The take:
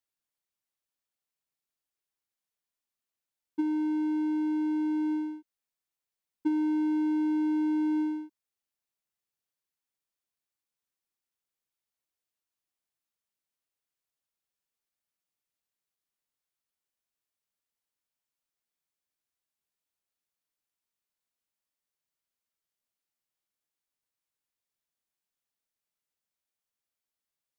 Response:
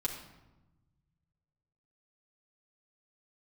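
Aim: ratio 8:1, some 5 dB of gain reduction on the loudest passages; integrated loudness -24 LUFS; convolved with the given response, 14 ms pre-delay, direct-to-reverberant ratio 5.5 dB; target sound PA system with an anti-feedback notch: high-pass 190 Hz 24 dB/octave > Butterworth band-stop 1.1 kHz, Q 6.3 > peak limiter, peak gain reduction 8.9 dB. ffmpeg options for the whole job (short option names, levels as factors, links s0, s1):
-filter_complex "[0:a]acompressor=threshold=0.0355:ratio=8,asplit=2[s0][s1];[1:a]atrim=start_sample=2205,adelay=14[s2];[s1][s2]afir=irnorm=-1:irlink=0,volume=0.376[s3];[s0][s3]amix=inputs=2:normalize=0,highpass=f=190:w=0.5412,highpass=f=190:w=1.3066,asuperstop=centerf=1100:order=8:qfactor=6.3,volume=4.47,alimiter=limit=0.112:level=0:latency=1"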